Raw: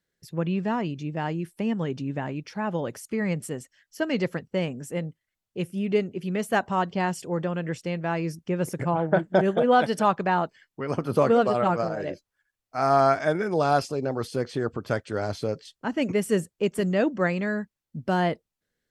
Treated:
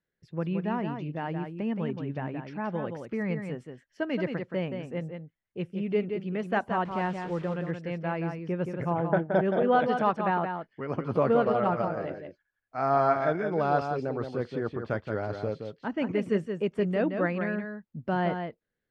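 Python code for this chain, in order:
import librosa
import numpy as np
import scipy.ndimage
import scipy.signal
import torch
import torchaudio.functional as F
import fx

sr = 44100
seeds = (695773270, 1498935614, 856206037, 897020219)

p1 = fx.delta_mod(x, sr, bps=64000, step_db=-35.5, at=(6.85, 7.54))
p2 = scipy.signal.sosfilt(scipy.signal.butter(2, 2700.0, 'lowpass', fs=sr, output='sos'), p1)
p3 = p2 + fx.echo_single(p2, sr, ms=173, db=-6.5, dry=0)
y = p3 * 10.0 ** (-4.0 / 20.0)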